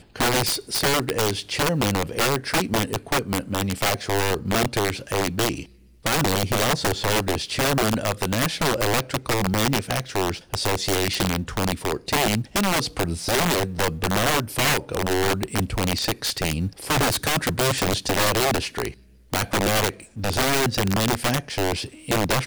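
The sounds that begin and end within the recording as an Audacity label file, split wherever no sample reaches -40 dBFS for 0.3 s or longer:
6.050000	18.940000	sound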